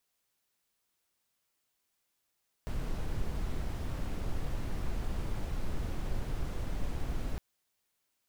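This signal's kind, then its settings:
noise brown, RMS −32.5 dBFS 4.71 s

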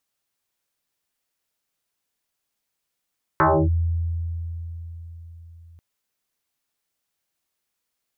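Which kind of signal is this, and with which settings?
two-operator FM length 2.39 s, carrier 83.8 Hz, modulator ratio 2.86, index 6.3, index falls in 0.29 s linear, decay 4.45 s, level −13 dB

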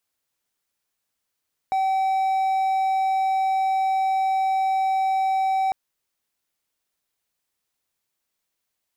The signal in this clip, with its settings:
tone triangle 767 Hz −17 dBFS 4.00 s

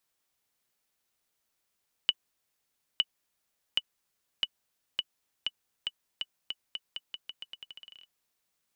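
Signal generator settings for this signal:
bouncing ball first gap 0.91 s, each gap 0.85, 2,960 Hz, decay 43 ms −11 dBFS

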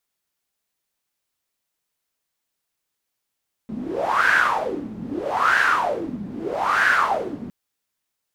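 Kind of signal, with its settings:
wind from filtered noise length 3.81 s, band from 210 Hz, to 1,600 Hz, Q 7.6, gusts 3, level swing 13.5 dB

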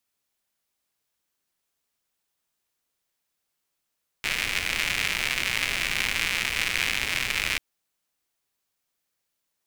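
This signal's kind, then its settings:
rain-like ticks over hiss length 3.34 s, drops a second 170, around 2,300 Hz, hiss −10.5 dB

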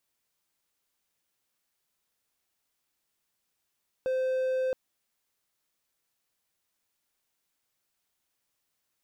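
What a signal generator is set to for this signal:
tone triangle 518 Hz −23.5 dBFS 0.67 s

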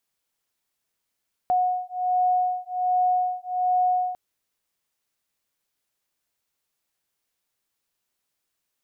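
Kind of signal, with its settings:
two tones that beat 729 Hz, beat 1.3 Hz, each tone −23.5 dBFS 2.65 s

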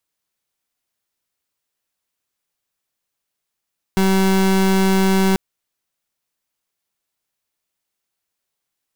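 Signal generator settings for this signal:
pulse wave 191 Hz, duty 31% −15 dBFS 1.39 s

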